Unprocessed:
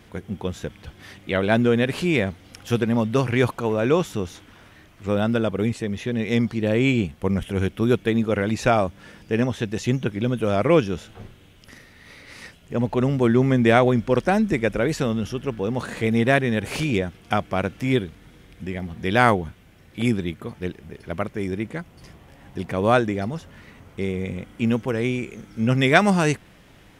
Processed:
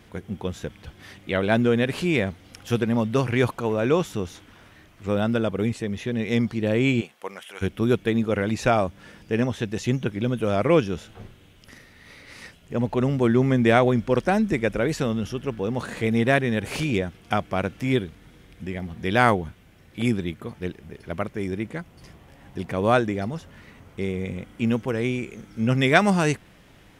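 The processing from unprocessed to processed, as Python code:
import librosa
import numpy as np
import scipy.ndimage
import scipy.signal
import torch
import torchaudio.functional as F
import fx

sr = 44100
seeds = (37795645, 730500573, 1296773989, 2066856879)

y = fx.highpass(x, sr, hz=fx.line((7.0, 480.0), (7.61, 1100.0)), slope=12, at=(7.0, 7.61), fade=0.02)
y = F.gain(torch.from_numpy(y), -1.5).numpy()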